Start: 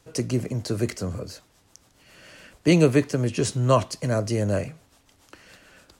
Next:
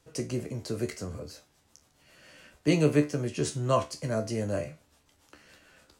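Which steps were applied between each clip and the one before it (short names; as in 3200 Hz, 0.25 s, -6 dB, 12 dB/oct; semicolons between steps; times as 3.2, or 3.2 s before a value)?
resonator 74 Hz, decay 0.25 s, harmonics all, mix 80%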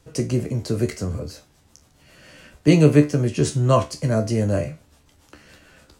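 low shelf 250 Hz +7.5 dB; gain +6 dB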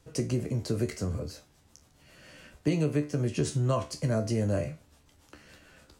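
compressor 6:1, threshold -18 dBFS, peak gain reduction 10.5 dB; gain -5 dB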